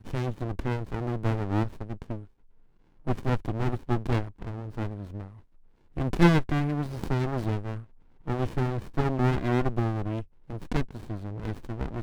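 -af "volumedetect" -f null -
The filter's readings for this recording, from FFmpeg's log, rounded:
mean_volume: -28.6 dB
max_volume: -8.1 dB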